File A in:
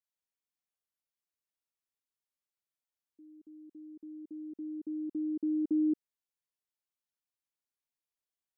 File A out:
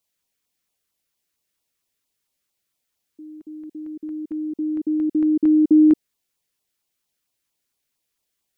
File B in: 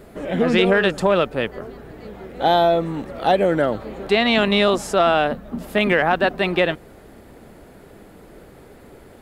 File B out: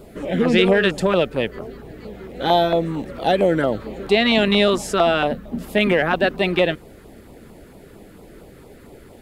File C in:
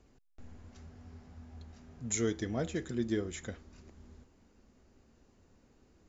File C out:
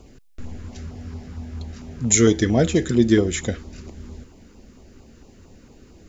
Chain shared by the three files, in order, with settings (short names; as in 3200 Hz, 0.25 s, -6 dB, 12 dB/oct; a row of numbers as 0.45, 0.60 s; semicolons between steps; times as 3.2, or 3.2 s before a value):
LFO notch saw down 4.4 Hz 570–1900 Hz; match loudness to -19 LUFS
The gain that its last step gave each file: +16.0, +1.5, +17.0 dB